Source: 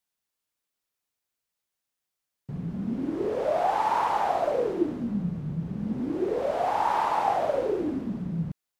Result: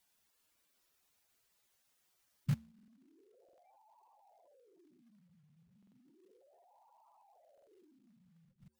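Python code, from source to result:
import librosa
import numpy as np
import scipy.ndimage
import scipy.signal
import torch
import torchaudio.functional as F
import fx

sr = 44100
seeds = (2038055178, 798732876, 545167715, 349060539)

y = fx.lowpass(x, sr, hz=1200.0, slope=12, at=(3.82, 4.4))
y = np.clip(10.0 ** (34.5 / 20.0) * y, -1.0, 1.0) / 10.0 ** (34.5 / 20.0)
y = fx.doubler(y, sr, ms=43.0, db=-13.0)
y = y + 10.0 ** (-15.5 / 20.0) * np.pad(y, (int(120 * sr / 1000.0), 0))[:len(y)]
y = fx.gate_flip(y, sr, shuts_db=-34.0, range_db=-40)
y = fx.comb_fb(y, sr, f0_hz=75.0, decay_s=0.66, harmonics='odd', damping=0.0, mix_pct=50)
y = fx.spec_gate(y, sr, threshold_db=-10, keep='strong')
y = fx.quant_float(y, sr, bits=2)
y = fx.buffer_glitch(y, sr, at_s=(2.74, 3.44, 5.78, 7.53), block=2048, repeats=2)
y = y * 10.0 ** (14.5 / 20.0)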